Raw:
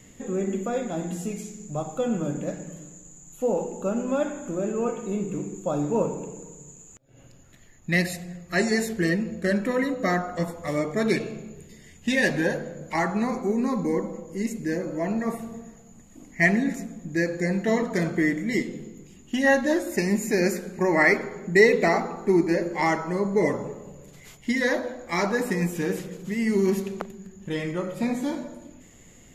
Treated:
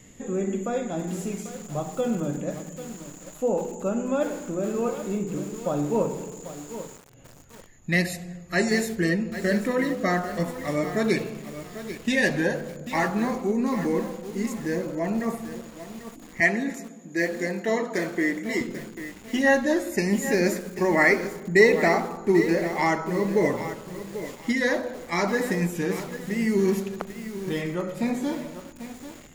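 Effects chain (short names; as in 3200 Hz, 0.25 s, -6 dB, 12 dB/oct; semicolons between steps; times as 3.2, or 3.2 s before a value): 16.4–18.61 HPF 280 Hz 12 dB/oct; lo-fi delay 0.792 s, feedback 35%, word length 6-bit, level -11 dB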